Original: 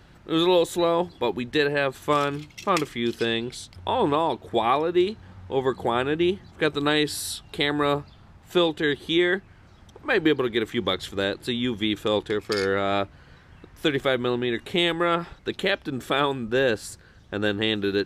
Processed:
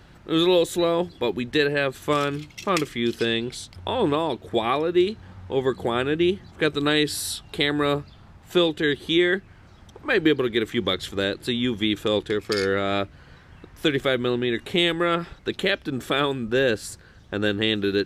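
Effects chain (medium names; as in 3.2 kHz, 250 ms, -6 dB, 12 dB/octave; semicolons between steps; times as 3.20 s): dynamic bell 880 Hz, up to -7 dB, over -39 dBFS, Q 1.7; trim +2 dB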